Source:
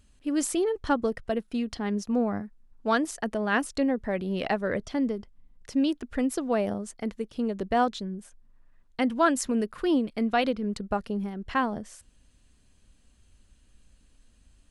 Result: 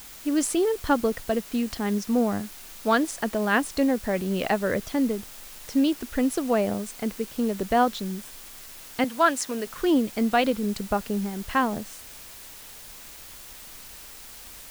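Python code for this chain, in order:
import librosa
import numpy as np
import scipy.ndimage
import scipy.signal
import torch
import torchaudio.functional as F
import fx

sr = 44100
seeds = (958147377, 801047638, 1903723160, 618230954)

p1 = fx.weighting(x, sr, curve='A', at=(9.04, 9.67))
p2 = fx.quant_dither(p1, sr, seeds[0], bits=6, dither='triangular')
y = p1 + (p2 * librosa.db_to_amplitude(-8.0))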